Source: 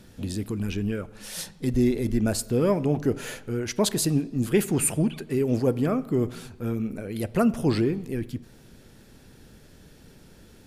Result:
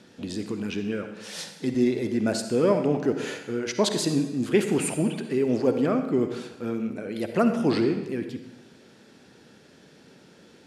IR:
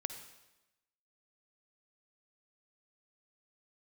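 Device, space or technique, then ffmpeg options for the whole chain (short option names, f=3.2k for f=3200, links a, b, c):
supermarket ceiling speaker: -filter_complex "[0:a]highpass=210,lowpass=6.3k[a];[1:a]atrim=start_sample=2205[b];[a][b]afir=irnorm=-1:irlink=0,volume=2.5dB"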